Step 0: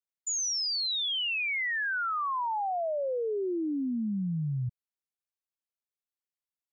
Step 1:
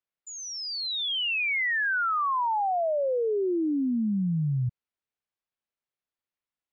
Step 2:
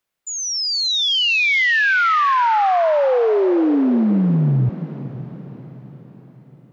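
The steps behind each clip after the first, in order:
LPF 3300 Hz; gain +4.5 dB
in parallel at -2 dB: limiter -32.5 dBFS, peak gain reduction 9.5 dB; on the sum: diffused feedback echo 0.49 s, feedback 51%, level -13.5 dB; gain +8 dB

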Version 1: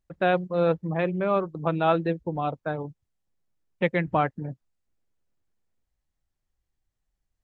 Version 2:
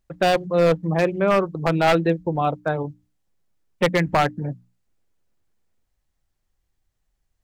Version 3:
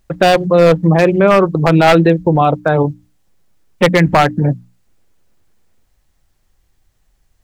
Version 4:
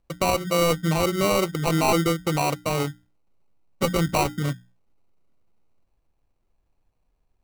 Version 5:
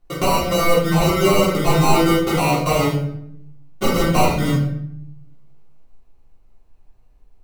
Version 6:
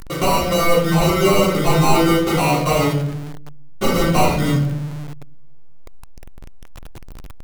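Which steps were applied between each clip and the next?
notches 60/120/180/240/300 Hz; wavefolder -16.5 dBFS; gain +6.5 dB
maximiser +15 dB; gain -1 dB
sample-and-hold 26×; resonator 810 Hz, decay 0.2 s, harmonics all, mix 40%; gain -7.5 dB
compressor, threshold -23 dBFS, peak gain reduction 6.5 dB; reverb RT60 0.70 s, pre-delay 3 ms, DRR -11 dB; gain -1 dB
zero-crossing step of -28.5 dBFS

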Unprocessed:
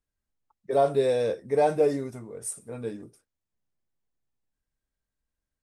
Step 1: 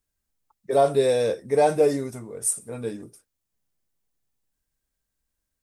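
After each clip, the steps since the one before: high shelf 5300 Hz +9 dB; gain +3 dB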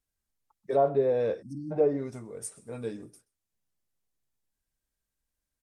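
treble ducked by the level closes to 1200 Hz, closed at -16.5 dBFS; outdoor echo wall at 22 m, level -24 dB; spectral delete 1.42–1.71, 330–4200 Hz; gain -4.5 dB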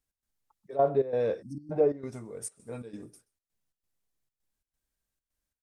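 step gate "x.xxxx.x" 133 bpm -12 dB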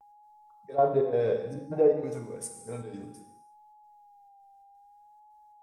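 non-linear reverb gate 0.37 s falling, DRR 4 dB; whine 820 Hz -54 dBFS; vibrato 0.61 Hz 50 cents

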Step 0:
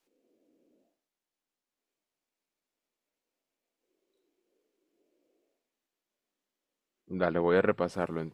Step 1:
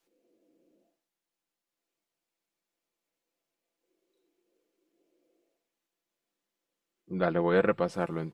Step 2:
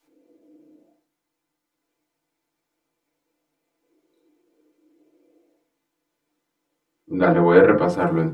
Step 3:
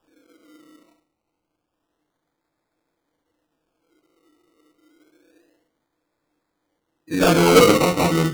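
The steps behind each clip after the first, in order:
comb 5.9 ms, depth 44%
FDN reverb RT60 0.33 s, low-frequency decay 1.25×, high-frequency decay 0.25×, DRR -3 dB; gain +5 dB
in parallel at -5.5 dB: hard clip -18.5 dBFS, distortion -6 dB; on the sum: decimation with a swept rate 21×, swing 60% 0.28 Hz; Doppler distortion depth 0.14 ms; gain -1 dB

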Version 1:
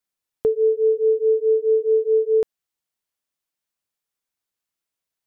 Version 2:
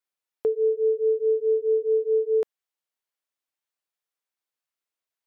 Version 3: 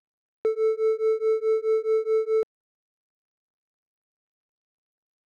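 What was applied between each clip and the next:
tone controls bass -14 dB, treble -4 dB; gain -2.5 dB
median filter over 41 samples

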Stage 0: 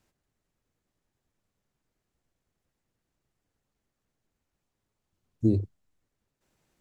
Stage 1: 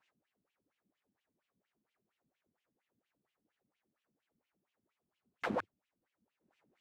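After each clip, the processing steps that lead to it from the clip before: wrapped overs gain 27.5 dB; wah 4.3 Hz 200–3000 Hz, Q 3.3; gain +8 dB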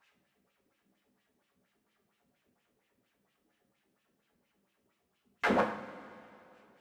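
two-slope reverb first 0.48 s, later 2.7 s, from -17 dB, DRR -1.5 dB; gain +5.5 dB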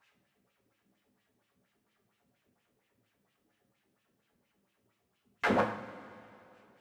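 bell 110 Hz +10.5 dB 0.34 oct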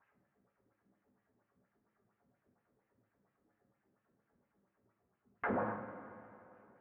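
LPF 1700 Hz 24 dB/oct; limiter -26 dBFS, peak gain reduction 10 dB; gain -1 dB

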